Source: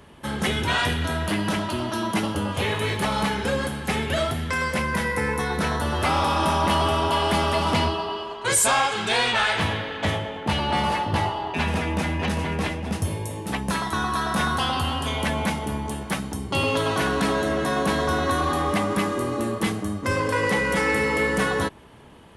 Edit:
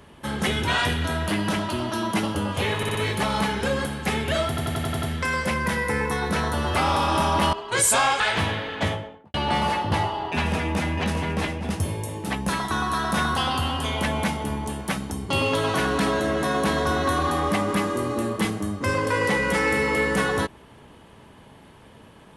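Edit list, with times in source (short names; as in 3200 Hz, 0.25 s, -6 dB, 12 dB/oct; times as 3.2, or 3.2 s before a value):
2.77 stutter 0.06 s, 4 plays
4.3 stutter 0.09 s, 7 plays
6.81–8.26 cut
8.93–9.42 cut
10.02–10.56 studio fade out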